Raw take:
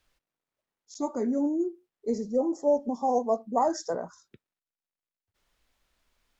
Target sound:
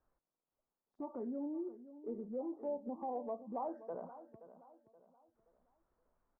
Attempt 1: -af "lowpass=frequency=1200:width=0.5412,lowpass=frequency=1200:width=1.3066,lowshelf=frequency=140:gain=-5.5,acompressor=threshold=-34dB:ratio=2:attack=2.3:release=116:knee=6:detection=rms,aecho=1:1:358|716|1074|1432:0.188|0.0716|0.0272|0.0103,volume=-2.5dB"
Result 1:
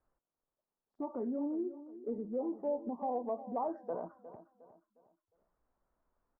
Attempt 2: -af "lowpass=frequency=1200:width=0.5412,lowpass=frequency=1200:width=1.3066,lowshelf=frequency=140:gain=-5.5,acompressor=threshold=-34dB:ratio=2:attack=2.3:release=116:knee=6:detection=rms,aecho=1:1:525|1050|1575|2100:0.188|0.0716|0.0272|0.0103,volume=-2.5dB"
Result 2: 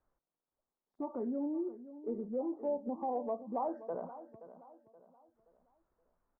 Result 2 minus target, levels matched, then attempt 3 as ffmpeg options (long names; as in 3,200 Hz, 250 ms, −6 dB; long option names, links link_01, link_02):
downward compressor: peak gain reduction −4.5 dB
-af "lowpass=frequency=1200:width=0.5412,lowpass=frequency=1200:width=1.3066,lowshelf=frequency=140:gain=-5.5,acompressor=threshold=-43.5dB:ratio=2:attack=2.3:release=116:knee=6:detection=rms,aecho=1:1:525|1050|1575|2100:0.188|0.0716|0.0272|0.0103,volume=-2.5dB"